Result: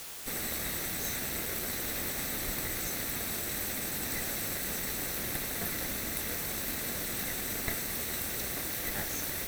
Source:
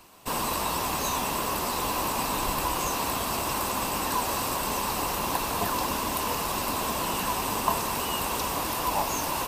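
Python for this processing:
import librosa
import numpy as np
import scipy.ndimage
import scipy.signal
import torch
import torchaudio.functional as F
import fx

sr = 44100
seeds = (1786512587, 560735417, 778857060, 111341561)

y = fx.lower_of_two(x, sr, delay_ms=0.5)
y = fx.high_shelf(y, sr, hz=11000.0, db=10.5)
y = fx.quant_dither(y, sr, seeds[0], bits=6, dither='triangular')
y = F.gain(torch.from_numpy(y), -7.0).numpy()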